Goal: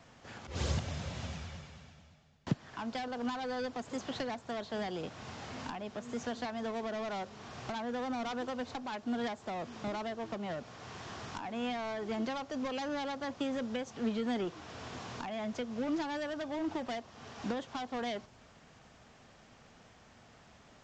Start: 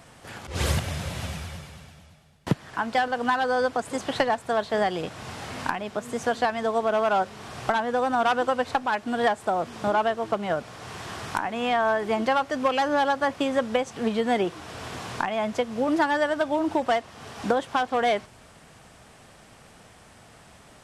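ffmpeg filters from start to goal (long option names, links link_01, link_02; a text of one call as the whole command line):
ffmpeg -i in.wav -filter_complex "[0:a]equalizer=frequency=240:width=6:gain=4,acrossover=split=340|1400|2900[link_01][link_02][link_03][link_04];[link_02]volume=31dB,asoftclip=hard,volume=-31dB[link_05];[link_03]acompressor=threshold=-46dB:ratio=6[link_06];[link_01][link_05][link_06][link_04]amix=inputs=4:normalize=0,aresample=16000,aresample=44100,volume=-8dB" out.wav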